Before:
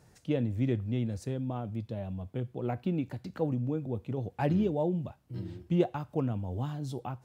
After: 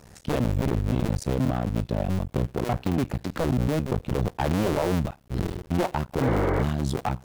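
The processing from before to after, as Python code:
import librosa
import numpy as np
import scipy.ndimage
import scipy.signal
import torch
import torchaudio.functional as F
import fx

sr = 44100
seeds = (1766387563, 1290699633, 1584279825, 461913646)

p1 = fx.cycle_switch(x, sr, every=2, mode='muted')
p2 = fx.over_compress(p1, sr, threshold_db=-34.0, ratio=-0.5)
p3 = p1 + (p2 * 10.0 ** (1.0 / 20.0))
p4 = fx.spec_repair(p3, sr, seeds[0], start_s=6.24, length_s=0.36, low_hz=290.0, high_hz=2300.0, source='before')
p5 = np.clip(10.0 ** (24.0 / 20.0) * p4, -1.0, 1.0) / 10.0 ** (24.0 / 20.0)
y = p5 * 10.0 ** (6.0 / 20.0)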